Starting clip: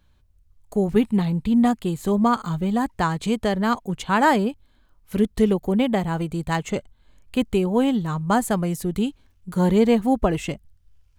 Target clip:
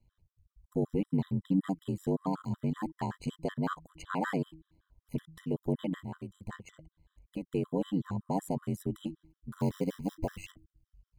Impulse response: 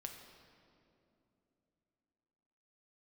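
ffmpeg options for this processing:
-filter_complex "[0:a]asettb=1/sr,asplit=3[a][b][c];[a]atrim=end=9.604[d];[b]atrim=start=9.6:end=10.51,asetpts=PTS-STARTPTS,afade=t=in:d=0.004:c=qsin,afade=t=out:st=0.906:d=0.004:c=qsin,acrusher=bits=4:mode=log:mix=0:aa=0.000001[e];[c]atrim=start=10.506[f];[d][e]acrossfade=d=0.004:c1=hsin:c2=qsin[g];[g][f]acrossfade=d=0.004:c1=qsin:c2=hsin,tiltshelf=f=740:g=3,asettb=1/sr,asplit=3[h][i][j];[h]atrim=end=6.004[k];[i]atrim=start=6:end=7.47,asetpts=PTS-STARTPTS,afade=t=in:d=0.004:c=qsin,afade=t=out:st=1.466:d=0.004:c=qsin,acompressor=threshold=-26dB:ratio=6[l];[j]atrim=start=7.466[m];[k][l]acrossfade=d=0.004:c1=hsin:c2=qsin[n];[n][m]acrossfade=d=0.004:c1=qsin:c2=hsin,alimiter=limit=-11.5dB:level=0:latency=1:release=145,aeval=exprs='val(0)*sin(2*PI*47*n/s)':c=same,bandreject=f=159.1:t=h:w=4,bandreject=f=318.2:t=h:w=4,afftfilt=real='re*gt(sin(2*PI*5.3*pts/sr)*(1-2*mod(floor(b*sr/1024/1000),2)),0)':imag='im*gt(sin(2*PI*5.3*pts/sr)*(1-2*mod(floor(b*sr/1024/1000),2)),0)':win_size=1024:overlap=0.75,volume=-6.5dB"

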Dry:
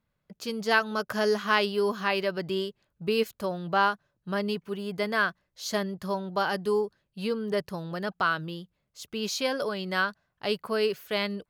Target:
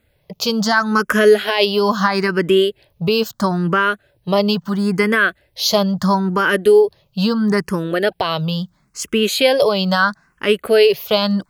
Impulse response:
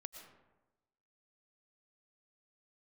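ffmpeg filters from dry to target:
-filter_complex "[0:a]asplit=2[a][b];[b]acompressor=threshold=-33dB:ratio=6,volume=2.5dB[c];[a][c]amix=inputs=2:normalize=0,alimiter=level_in=14dB:limit=-1dB:release=50:level=0:latency=1,asplit=2[d][e];[e]afreqshift=0.75[f];[d][f]amix=inputs=2:normalize=1,volume=-1dB"

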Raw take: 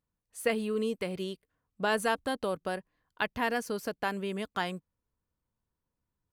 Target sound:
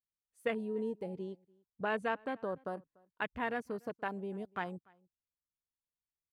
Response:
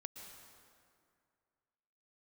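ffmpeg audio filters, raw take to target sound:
-filter_complex "[0:a]asettb=1/sr,asplit=3[a][b][c];[a]atrim=end=1.144[d];[b]atrim=start=1.14:end=2.64,asetpts=PTS-STARTPTS,afade=t=in:d=0.004:c=qsin,afade=t=out:st=1.496:d=0.004:c=qsin,lowpass=7.9k[e];[c]atrim=start=2.636[f];[d][e]acrossfade=d=0.004:c1=hsin:c2=qsin[g];[g][f]acrossfade=d=0.004:c1=qsin:c2=hsin,afwtdn=0.0141,asplit=2[h][i];[i]adelay=291.5,volume=-27dB,highshelf=f=4k:g=-6.56[j];[h][j]amix=inputs=2:normalize=0,volume=-5.5dB"

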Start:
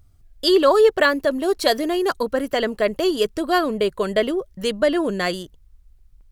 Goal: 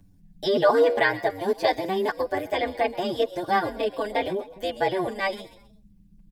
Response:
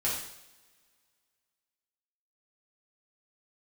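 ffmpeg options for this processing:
-filter_complex "[0:a]bandreject=f=437.8:t=h:w=4,bandreject=f=875.6:t=h:w=4,bandreject=f=1.3134k:t=h:w=4,bandreject=f=1.7512k:t=h:w=4,bandreject=f=2.189k:t=h:w=4,bandreject=f=2.6268k:t=h:w=4,bandreject=f=3.0646k:t=h:w=4,bandreject=f=3.5024k:t=h:w=4,bandreject=f=3.9402k:t=h:w=4,bandreject=f=4.378k:t=h:w=4,bandreject=f=4.8158k:t=h:w=4,bandreject=f=5.2536k:t=h:w=4,bandreject=f=5.6914k:t=h:w=4,bandreject=f=6.1292k:t=h:w=4,bandreject=f=6.567k:t=h:w=4,bandreject=f=7.0048k:t=h:w=4,bandreject=f=7.4426k:t=h:w=4,bandreject=f=7.8804k:t=h:w=4,bandreject=f=8.3182k:t=h:w=4,bandreject=f=8.756k:t=h:w=4,bandreject=f=9.1938k:t=h:w=4,bandreject=f=9.6316k:t=h:w=4,bandreject=f=10.0694k:t=h:w=4,bandreject=f=10.5072k:t=h:w=4,bandreject=f=10.945k:t=h:w=4,bandreject=f=11.3828k:t=h:w=4,bandreject=f=11.8206k:t=h:w=4,bandreject=f=12.2584k:t=h:w=4,bandreject=f=12.6962k:t=h:w=4,bandreject=f=13.134k:t=h:w=4,bandreject=f=13.5718k:t=h:w=4,bandreject=f=14.0096k:t=h:w=4,bandreject=f=14.4474k:t=h:w=4,bandreject=f=14.8852k:t=h:w=4,bandreject=f=15.323k:t=h:w=4,bandreject=f=15.7608k:t=h:w=4,asplit=4[a][b][c][d];[b]adelay=125,afreqshift=73,volume=-19dB[e];[c]adelay=250,afreqshift=146,volume=-27.2dB[f];[d]adelay=375,afreqshift=219,volume=-35.4dB[g];[a][e][f][g]amix=inputs=4:normalize=0,acrossover=split=290[h][i];[h]acompressor=threshold=-43dB:ratio=12[j];[j][i]amix=inputs=2:normalize=0,tremolo=f=170:d=0.889,acrossover=split=3500[k][l];[l]acompressor=threshold=-46dB:ratio=4:attack=1:release=60[m];[k][m]amix=inputs=2:normalize=0,asetrate=48091,aresample=44100,atempo=0.917004,asuperstop=centerf=1300:order=12:qfactor=6.6,asplit=2[n][o];[o]adelay=7.5,afreqshift=-0.49[p];[n][p]amix=inputs=2:normalize=1,volume=3.5dB"

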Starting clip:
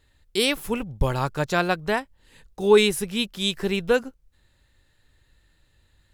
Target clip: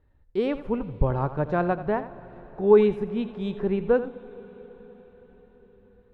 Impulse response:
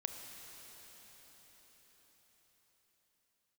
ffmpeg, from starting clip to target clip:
-filter_complex "[0:a]lowpass=1k,asplit=2[a][b];[1:a]atrim=start_sample=2205,adelay=85[c];[b][c]afir=irnorm=-1:irlink=0,volume=-11.5dB[d];[a][d]amix=inputs=2:normalize=0"

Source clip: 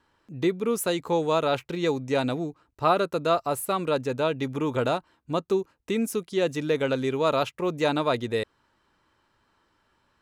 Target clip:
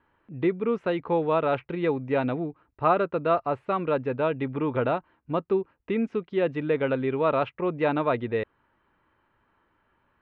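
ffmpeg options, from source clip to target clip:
-af "lowpass=f=2.6k:w=0.5412,lowpass=f=2.6k:w=1.3066"

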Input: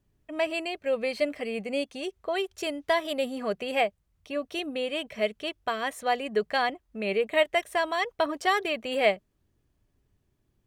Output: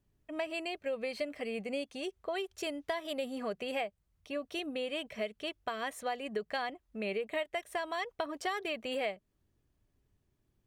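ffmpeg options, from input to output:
-af "acompressor=threshold=-28dB:ratio=5,volume=-4dB"

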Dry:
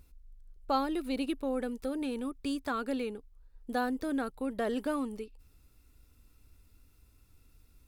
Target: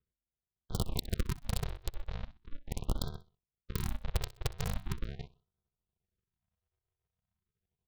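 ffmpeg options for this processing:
-af "highpass=f=80:w=0.5412,highpass=f=80:w=1.3066,agate=range=-14dB:threshold=-58dB:ratio=16:detection=peak,aresample=8000,acrusher=samples=28:mix=1:aa=0.000001,aresample=44100,aeval=exprs='0.158*(cos(1*acos(clip(val(0)/0.158,-1,1)))-cos(1*PI/2))+0.0562*(cos(2*acos(clip(val(0)/0.158,-1,1)))-cos(2*PI/2))+0.00631*(cos(3*acos(clip(val(0)/0.158,-1,1)))-cos(3*PI/2))+0.00501*(cos(4*acos(clip(val(0)/0.158,-1,1)))-cos(4*PI/2))+0.0562*(cos(6*acos(clip(val(0)/0.158,-1,1)))-cos(6*PI/2))':c=same,aeval=exprs='(mod(8.41*val(0)+1,2)-1)/8.41':c=same,aecho=1:1:63|126|189:0.126|0.0415|0.0137,afftfilt=real='re*(1-between(b*sr/1024,220*pow(2300/220,0.5+0.5*sin(2*PI*0.4*pts/sr))/1.41,220*pow(2300/220,0.5+0.5*sin(2*PI*0.4*pts/sr))*1.41))':imag='im*(1-between(b*sr/1024,220*pow(2300/220,0.5+0.5*sin(2*PI*0.4*pts/sr))/1.41,220*pow(2300/220,0.5+0.5*sin(2*PI*0.4*pts/sr))*1.41))':win_size=1024:overlap=0.75,volume=-5dB"

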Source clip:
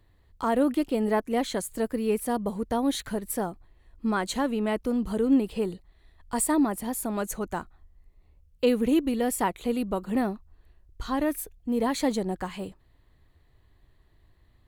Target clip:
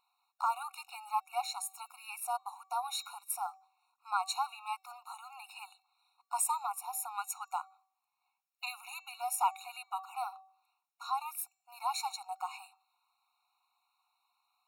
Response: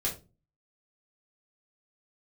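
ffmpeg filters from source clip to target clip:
-af "bandreject=f=381.8:t=h:w=4,bandreject=f=763.6:t=h:w=4,bandreject=f=1.1454k:t=h:w=4,bandreject=f=1.5272k:t=h:w=4,bandreject=f=1.909k:t=h:w=4,bandreject=f=2.2908k:t=h:w=4,bandreject=f=2.6726k:t=h:w=4,bandreject=f=3.0544k:t=h:w=4,bandreject=f=3.4362k:t=h:w=4,bandreject=f=3.818k:t=h:w=4,bandreject=f=4.1998k:t=h:w=4,bandreject=f=4.5816k:t=h:w=4,bandreject=f=4.9634k:t=h:w=4,bandreject=f=5.3452k:t=h:w=4,bandreject=f=5.727k:t=h:w=4,bandreject=f=6.1088k:t=h:w=4,bandreject=f=6.4906k:t=h:w=4,bandreject=f=6.8724k:t=h:w=4,bandreject=f=7.2542k:t=h:w=4,bandreject=f=7.636k:t=h:w=4,bandreject=f=8.0178k:t=h:w=4,afftfilt=real='re*eq(mod(floor(b*sr/1024/730),2),1)':imag='im*eq(mod(floor(b*sr/1024/730),2),1)':win_size=1024:overlap=0.75,volume=-1dB"

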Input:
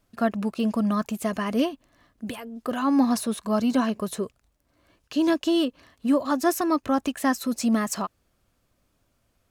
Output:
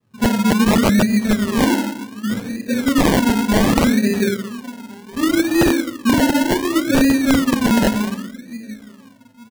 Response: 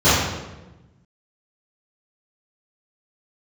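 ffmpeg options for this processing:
-filter_complex "[0:a]highpass=f=70:p=1,asplit=2[a][b];[b]adelay=865,lowpass=f=3.9k:p=1,volume=-20.5dB,asplit=2[c][d];[d]adelay=865,lowpass=f=3.9k:p=1,volume=0.27[e];[a][c][e]amix=inputs=3:normalize=0[f];[1:a]atrim=start_sample=2205,asetrate=66150,aresample=44100[g];[f][g]afir=irnorm=-1:irlink=0,acrossover=split=730|990[h][i][j];[h]aeval=exprs='(mod(0.355*val(0)+1,2)-1)/0.355':c=same[k];[k][i][j]amix=inputs=3:normalize=0,asuperstop=centerf=1000:order=12:qfactor=0.89,acrusher=samples=29:mix=1:aa=0.000001:lfo=1:lforange=17.4:lforate=0.67,volume=-16.5dB"

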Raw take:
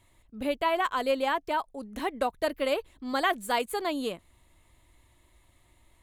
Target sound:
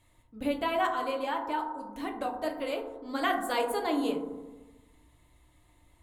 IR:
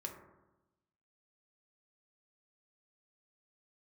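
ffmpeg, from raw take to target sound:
-filter_complex "[0:a]asettb=1/sr,asplit=3[a][b][c];[a]atrim=end=0.874[d];[b]atrim=start=0.87:end=3.22,asetpts=PTS-STARTPTS,afade=t=in:d=0.004:c=qsin,afade=t=out:st=2.346:d=0.004:c=qsin,flanger=delay=5.6:depth=7.4:regen=40:speed=1.7:shape=triangular[e];[c]atrim=start=3.216[f];[d][e]acrossfade=d=0.004:c1=hsin:c2=qsin[g];[g][f]acrossfade=d=0.004:c1=qsin:c2=hsin[h];[1:a]atrim=start_sample=2205,asetrate=35721,aresample=44100[i];[h][i]afir=irnorm=-1:irlink=0"

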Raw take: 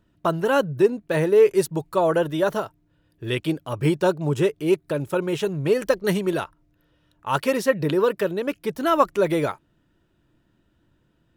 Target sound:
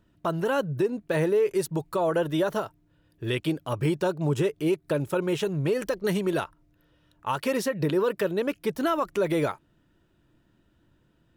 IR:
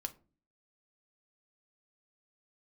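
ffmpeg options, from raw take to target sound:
-af "alimiter=limit=-16.5dB:level=0:latency=1:release=128"

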